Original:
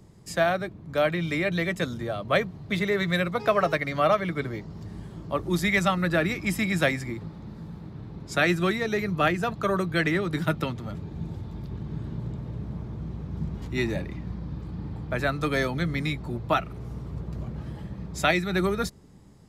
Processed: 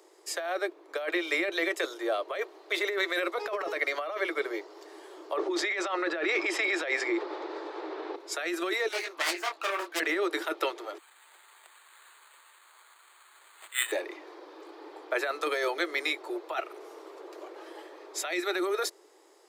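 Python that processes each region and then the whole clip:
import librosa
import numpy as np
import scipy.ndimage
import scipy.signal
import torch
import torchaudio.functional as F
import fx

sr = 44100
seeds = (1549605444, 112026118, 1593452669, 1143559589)

y = fx.chain(x, sr, fx.highpass(hz=190.0, slope=12),
    fx.air_absorb(metres=130.0),
    fx.env_flatten(amount_pct=50), at=(5.37, 8.16))
y = fx.chain(y, sr, fx.self_delay(depth_ms=0.48),
    fx.peak_eq(hz=440.0, db=-11.5, octaves=0.54),
    fx.detune_double(cents=19), at=(8.88, 10.0))
y = fx.chain(y, sr, fx.cheby2_highpass(hz=460.0, order=4, stop_db=50),
    fx.resample_bad(factor=8, down='none', up='hold'),
    fx.peak_eq(hz=8400.0, db=10.0, octaves=0.24), at=(10.98, 13.92))
y = scipy.signal.sosfilt(scipy.signal.butter(16, 330.0, 'highpass', fs=sr, output='sos'), y)
y = fx.over_compress(y, sr, threshold_db=-29.0, ratio=-1.0)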